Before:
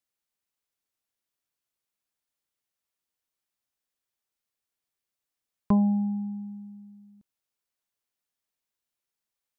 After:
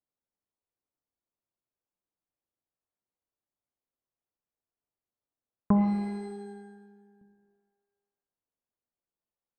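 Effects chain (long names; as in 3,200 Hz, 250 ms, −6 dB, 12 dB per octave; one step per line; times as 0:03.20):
low-pass that shuts in the quiet parts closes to 840 Hz, open at −31.5 dBFS
reverb with rising layers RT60 1.1 s, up +12 semitones, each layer −8 dB, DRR 6 dB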